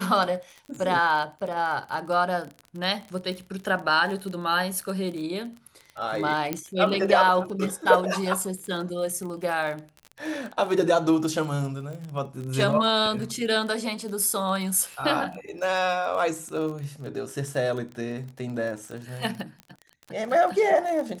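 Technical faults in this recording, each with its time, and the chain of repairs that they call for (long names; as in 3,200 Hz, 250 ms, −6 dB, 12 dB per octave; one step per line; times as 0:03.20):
surface crackle 31 per second −32 dBFS
0:06.53: click −11 dBFS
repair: click removal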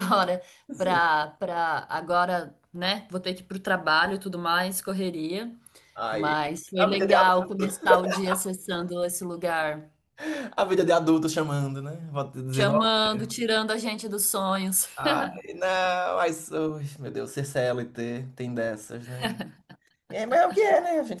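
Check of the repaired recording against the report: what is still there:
none of them is left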